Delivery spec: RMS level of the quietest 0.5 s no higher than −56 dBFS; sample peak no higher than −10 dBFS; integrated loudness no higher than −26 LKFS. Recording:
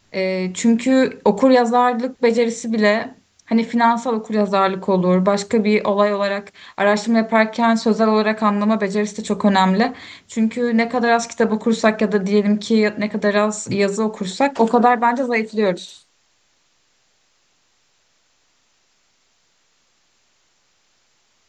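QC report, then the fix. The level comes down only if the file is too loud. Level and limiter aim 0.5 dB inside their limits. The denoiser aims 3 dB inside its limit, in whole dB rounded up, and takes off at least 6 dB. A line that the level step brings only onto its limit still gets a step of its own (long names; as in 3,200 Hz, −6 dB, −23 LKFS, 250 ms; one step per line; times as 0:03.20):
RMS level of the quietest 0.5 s −62 dBFS: in spec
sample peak −2.0 dBFS: out of spec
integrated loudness −18.0 LKFS: out of spec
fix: level −8.5 dB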